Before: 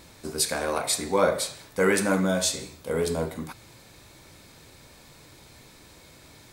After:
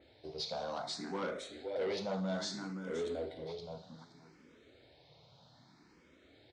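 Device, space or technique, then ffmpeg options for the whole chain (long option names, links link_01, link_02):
barber-pole phaser into a guitar amplifier: -filter_complex "[0:a]aecho=1:1:521|1042|1563:0.376|0.0864|0.0199,asplit=2[link_01][link_02];[link_02]afreqshift=0.63[link_03];[link_01][link_03]amix=inputs=2:normalize=1,asoftclip=type=tanh:threshold=-24dB,highpass=93,equalizer=frequency=95:width_type=q:width=4:gain=-4,equalizer=frequency=700:width_type=q:width=4:gain=3,equalizer=frequency=1100:width_type=q:width=4:gain=-5,equalizer=frequency=1700:width_type=q:width=4:gain=-4,equalizer=frequency=2500:width_type=q:width=4:gain=-7,lowpass=frequency=4500:width=0.5412,lowpass=frequency=4500:width=1.3066,adynamicequalizer=threshold=0.00224:dfrequency=3900:dqfactor=0.7:tfrequency=3900:tqfactor=0.7:attack=5:release=100:ratio=0.375:range=3.5:mode=boostabove:tftype=highshelf,volume=-7dB"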